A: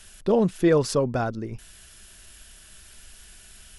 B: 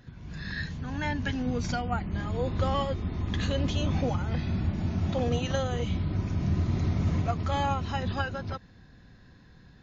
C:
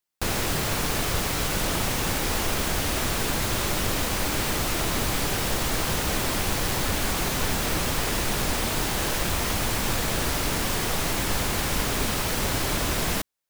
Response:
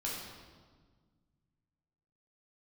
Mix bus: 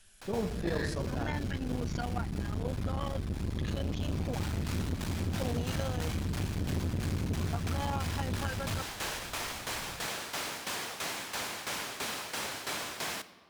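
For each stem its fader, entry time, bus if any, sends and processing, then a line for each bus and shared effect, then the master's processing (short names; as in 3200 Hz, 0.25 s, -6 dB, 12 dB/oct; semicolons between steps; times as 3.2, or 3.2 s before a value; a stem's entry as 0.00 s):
-14.5 dB, 0.00 s, no bus, send -6.5 dB, dry
-0.5 dB, 0.25 s, bus A, no send, dry
-6.5 dB, 0.00 s, bus A, send -14 dB, weighting filter A; tremolo saw down 3 Hz, depth 75%; auto duck -22 dB, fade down 0.55 s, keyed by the first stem
bus A: 0.0 dB, low shelf 120 Hz +8 dB; compressor 2.5:1, threshold -29 dBFS, peak gain reduction 8 dB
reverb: on, RT60 1.6 s, pre-delay 10 ms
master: core saturation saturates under 290 Hz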